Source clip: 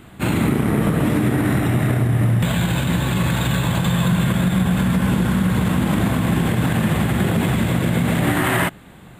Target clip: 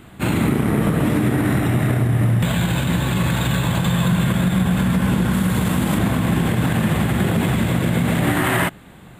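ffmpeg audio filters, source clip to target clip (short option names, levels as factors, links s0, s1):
-filter_complex "[0:a]asettb=1/sr,asplit=3[s0][s1][s2];[s0]atrim=end=5.334[s3];[s1]atrim=start=5.33:end=5.98,asetpts=PTS-STARTPTS,afade=t=in:d=0.004:c=qsin,afade=t=out:st=0.646:d=0.004:c=qsin,bass=f=250:g=-1,treble=f=4000:g=5[s4];[s2]atrim=start=5.976[s5];[s3][s4]acrossfade=d=0.004:c1=hsin:c2=qsin[s6];[s6][s5]acrossfade=d=0.004:c1=qsin:c2=hsin"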